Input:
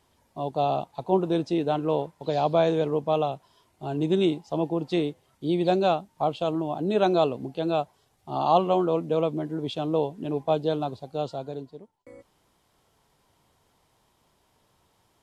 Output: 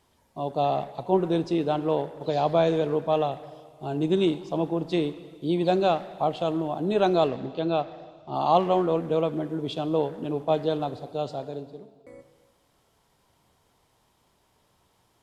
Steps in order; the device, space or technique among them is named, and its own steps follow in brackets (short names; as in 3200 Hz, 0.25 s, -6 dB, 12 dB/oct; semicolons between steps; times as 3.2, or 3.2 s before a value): 7.28–8.35 LPF 5700 Hz 24 dB/oct; saturated reverb return (on a send at -11.5 dB: reverb RT60 1.5 s, pre-delay 12 ms + soft clip -24 dBFS, distortion -10 dB)